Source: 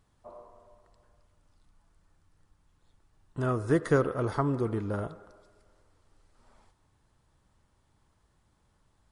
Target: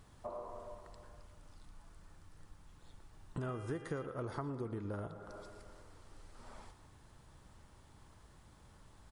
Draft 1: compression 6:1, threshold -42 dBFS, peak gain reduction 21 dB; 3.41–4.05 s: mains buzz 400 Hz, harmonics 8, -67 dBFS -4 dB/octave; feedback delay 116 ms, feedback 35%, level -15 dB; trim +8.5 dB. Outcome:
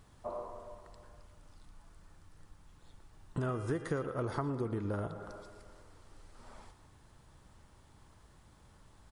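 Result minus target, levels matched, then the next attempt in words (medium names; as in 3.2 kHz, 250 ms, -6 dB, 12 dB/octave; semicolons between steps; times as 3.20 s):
compression: peak gain reduction -5.5 dB
compression 6:1, threshold -48.5 dBFS, peak gain reduction 26.5 dB; 3.41–4.05 s: mains buzz 400 Hz, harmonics 8, -67 dBFS -4 dB/octave; feedback delay 116 ms, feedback 35%, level -15 dB; trim +8.5 dB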